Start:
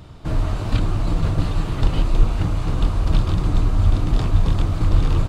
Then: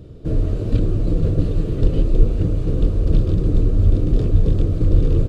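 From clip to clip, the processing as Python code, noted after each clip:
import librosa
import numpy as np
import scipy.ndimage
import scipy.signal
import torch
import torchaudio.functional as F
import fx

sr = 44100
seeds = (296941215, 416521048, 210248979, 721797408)

y = fx.low_shelf_res(x, sr, hz=640.0, db=10.5, q=3.0)
y = fx.notch(y, sr, hz=2100.0, q=22.0)
y = F.gain(torch.from_numpy(y), -9.0).numpy()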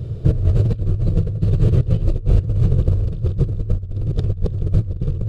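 y = fx.peak_eq(x, sr, hz=110.0, db=12.5, octaves=0.79)
y = fx.over_compress(y, sr, threshold_db=-16.0, ratio=-0.5)
y = fx.peak_eq(y, sr, hz=270.0, db=-12.5, octaves=0.36)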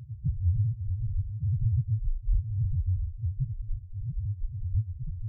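y = fx.add_hum(x, sr, base_hz=60, snr_db=16)
y = np.sign(y) * np.maximum(np.abs(y) - 10.0 ** (-31.0 / 20.0), 0.0)
y = fx.spec_topn(y, sr, count=1)
y = F.gain(torch.from_numpy(y), -2.5).numpy()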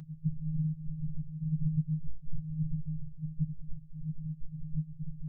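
y = fx.robotise(x, sr, hz=156.0)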